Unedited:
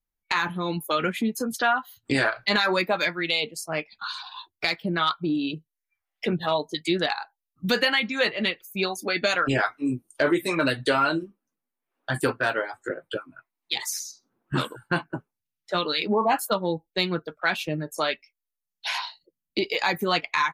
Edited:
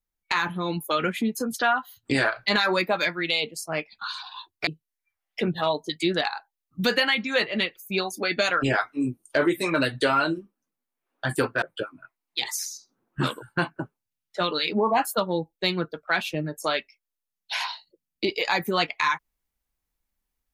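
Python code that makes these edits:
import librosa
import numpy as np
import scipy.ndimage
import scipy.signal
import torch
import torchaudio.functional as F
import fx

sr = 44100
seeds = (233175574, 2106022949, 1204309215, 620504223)

y = fx.edit(x, sr, fx.cut(start_s=4.67, length_s=0.85),
    fx.cut(start_s=12.47, length_s=0.49), tone=tone)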